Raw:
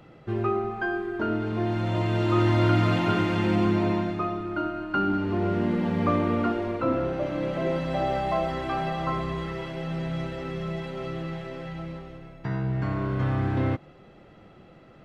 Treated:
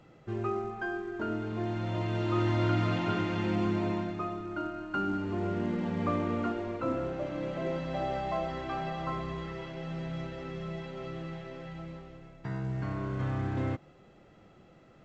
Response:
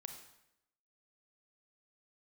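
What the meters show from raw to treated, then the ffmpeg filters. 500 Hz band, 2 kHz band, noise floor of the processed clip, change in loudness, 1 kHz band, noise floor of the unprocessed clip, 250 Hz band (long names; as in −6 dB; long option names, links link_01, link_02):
−6.5 dB, −6.5 dB, −57 dBFS, −6.5 dB, −6.5 dB, −51 dBFS, −6.5 dB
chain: -af "volume=-6.5dB" -ar 16000 -c:a pcm_mulaw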